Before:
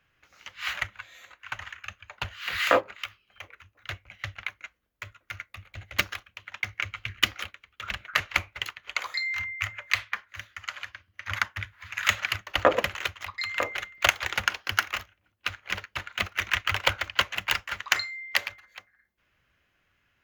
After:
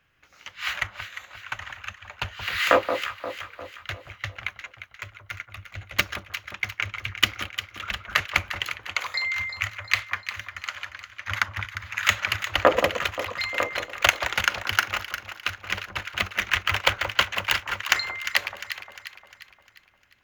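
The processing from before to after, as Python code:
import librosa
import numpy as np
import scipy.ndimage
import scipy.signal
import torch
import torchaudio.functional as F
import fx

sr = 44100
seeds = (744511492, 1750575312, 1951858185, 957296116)

y = fx.echo_alternate(x, sr, ms=176, hz=1200.0, feedback_pct=68, wet_db=-7)
y = y * 10.0 ** (2.5 / 20.0)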